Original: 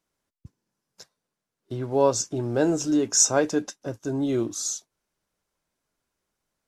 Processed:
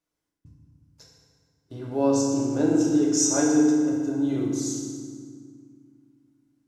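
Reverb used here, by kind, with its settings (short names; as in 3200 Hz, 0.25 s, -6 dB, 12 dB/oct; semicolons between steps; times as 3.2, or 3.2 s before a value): FDN reverb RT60 1.9 s, low-frequency decay 1.6×, high-frequency decay 0.7×, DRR -3.5 dB; gain -8 dB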